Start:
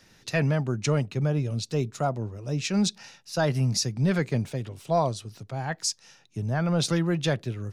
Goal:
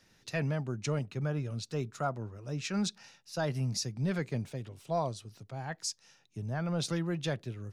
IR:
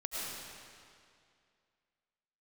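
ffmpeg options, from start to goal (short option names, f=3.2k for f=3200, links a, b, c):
-filter_complex "[0:a]asettb=1/sr,asplit=3[a][b][c];[a]atrim=end=0.994[d];[b]atrim=start=0.99:end=2.99,asetpts=PTS-STARTPTS,afade=t=in:d=0.004:c=qsin,afade=t=out:st=1.996:d=0.004:c=qsin,adynamicequalizer=threshold=0.00355:dfrequency=1400:dqfactor=1.6:tfrequency=1400:tqfactor=1.6:attack=5:release=100:ratio=0.375:range=4:mode=boostabove:tftype=bell[e];[c]atrim=start=2.986[f];[d][e]acrossfade=d=0.004:c1=hsin:c2=qsin[g];[g][f]acrossfade=d=0.004:c1=qsin:c2=hsin,volume=-8dB"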